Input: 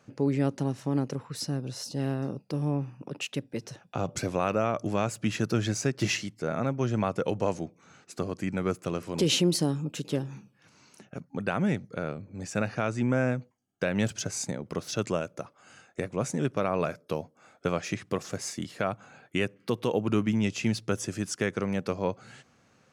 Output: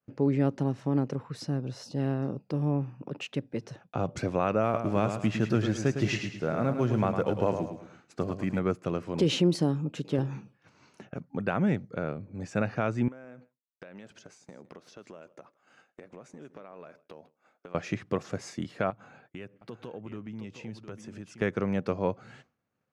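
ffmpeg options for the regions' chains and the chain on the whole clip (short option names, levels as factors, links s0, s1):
-filter_complex "[0:a]asettb=1/sr,asplit=3[s0][s1][s2];[s0]atrim=end=4.634[s3];[s1]atrim=start=4.63:end=8.59,asetpts=PTS-STARTPTS,afade=t=in:d=0.004:c=qsin,afade=t=out:st=3.956:d=0.004:c=qsin,acrusher=bits=7:mode=log:mix=0:aa=0.000001,aecho=1:1:107|214|321|428:0.422|0.16|0.0609|0.0231,atrim=end_sample=174636[s4];[s2]atrim=start=8.586[s5];[s3][s4]acrossfade=d=0.004:c1=hsin:c2=qsin[s6];[s6][s5]acrossfade=d=0.004:c1=qsin:c2=hsin,asettb=1/sr,asplit=3[s7][s8][s9];[s7]atrim=end=10.184[s10];[s8]atrim=start=10.18:end=11.14,asetpts=PTS-STARTPTS,afade=t=in:d=0.004:c=qsin,afade=t=out:st=0.956:d=0.004:c=qsin,equalizer=f=200:w=1.3:g=-3.5,acontrast=46[s11];[s9]atrim=start=11.136[s12];[s10][s11]acrossfade=d=0.004:c1=hsin:c2=qsin[s13];[s13][s12]acrossfade=d=0.004:c1=qsin:c2=hsin,asettb=1/sr,asplit=3[s14][s15][s16];[s14]atrim=end=13.084[s17];[s15]atrim=start=13.08:end=17.75,asetpts=PTS-STARTPTS,afade=t=in:d=0.004:c=qsin,afade=t=out:st=4.666:d=0.004:c=qsin,equalizer=f=97:t=o:w=1.4:g=-14.5,acompressor=threshold=0.00708:ratio=8:attack=3.2:release=140:knee=1:detection=peak,aecho=1:1:160:0.133,atrim=end_sample=205947[s18];[s16]atrim=start=17.746[s19];[s17][s18]acrossfade=d=0.004:c1=hsin:c2=qsin[s20];[s20][s19]acrossfade=d=0.004:c1=qsin:c2=hsin,asettb=1/sr,asplit=3[s21][s22][s23];[s21]atrim=end=18.904[s24];[s22]atrim=start=18.9:end=21.42,asetpts=PTS-STARTPTS,afade=t=in:d=0.004:c=qsin,afade=t=out:st=2.516:d=0.004:c=qsin,acompressor=threshold=0.00562:ratio=2.5:attack=3.2:release=140:knee=1:detection=peak,aecho=1:1:712:0.335,atrim=end_sample=111132[s25];[s23]atrim=start=21.416[s26];[s24][s25]acrossfade=d=0.004:c1=hsin:c2=qsin[s27];[s27][s26]acrossfade=d=0.004:c1=qsin:c2=hsin,aemphasis=mode=reproduction:type=75fm,agate=range=0.0224:threshold=0.00316:ratio=3:detection=peak"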